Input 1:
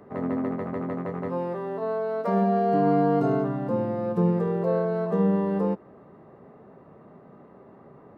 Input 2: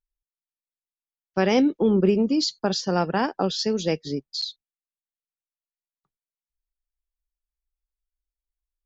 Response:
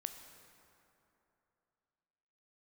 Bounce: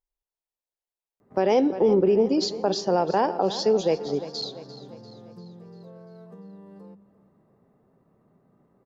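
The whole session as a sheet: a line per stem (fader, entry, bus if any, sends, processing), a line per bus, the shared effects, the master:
-16.5 dB, 1.20 s, no send, echo send -18.5 dB, tone controls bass +8 dB, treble +12 dB; notches 50/100/150/200 Hz; compressor 4:1, threshold -27 dBFS, peak gain reduction 12 dB
-5.5 dB, 0.00 s, send -9.5 dB, echo send -14.5 dB, band shelf 600 Hz +9.5 dB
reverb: on, RT60 3.0 s, pre-delay 13 ms
echo: feedback echo 0.345 s, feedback 51%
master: limiter -12 dBFS, peak gain reduction 6 dB

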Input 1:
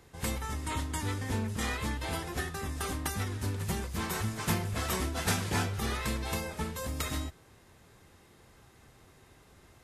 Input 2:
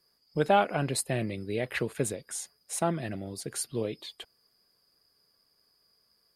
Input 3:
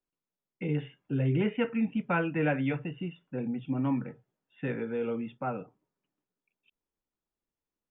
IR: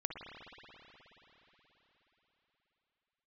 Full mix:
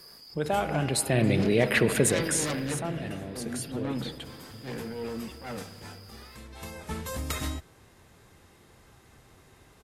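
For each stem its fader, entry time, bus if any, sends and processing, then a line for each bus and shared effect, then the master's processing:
+2.0 dB, 0.30 s, no send, auto duck -17 dB, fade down 1.00 s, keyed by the second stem
0.72 s -8.5 dB -> 1.27 s -0.5 dB -> 2.28 s -0.5 dB -> 2.76 s -13 dB, 0.00 s, send -5.5 dB, fast leveller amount 50%
-4.5 dB, 0.00 s, send -9 dB, self-modulated delay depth 0.51 ms; transient shaper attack -12 dB, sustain +6 dB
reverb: on, RT60 4.3 s, pre-delay 53 ms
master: dry

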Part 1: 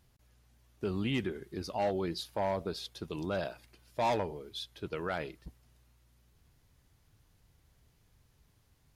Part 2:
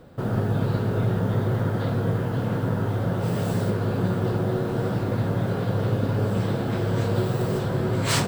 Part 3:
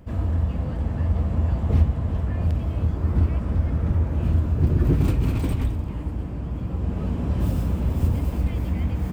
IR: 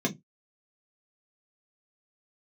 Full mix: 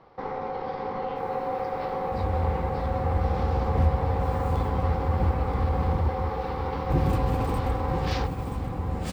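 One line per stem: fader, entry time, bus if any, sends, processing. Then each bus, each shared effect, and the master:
-13.5 dB, 0.00 s, bus A, no send, no echo send, dry
-3.5 dB, 0.00 s, bus A, no send, echo send -8 dB, ring modulator 640 Hz
-4.5 dB, 2.05 s, muted 6.09–6.9, no bus, no send, echo send -7 dB, dry
bus A: 0.0 dB, steep low-pass 5700 Hz 48 dB/oct; limiter -22 dBFS, peak gain reduction 7 dB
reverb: off
echo: echo 0.979 s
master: dry

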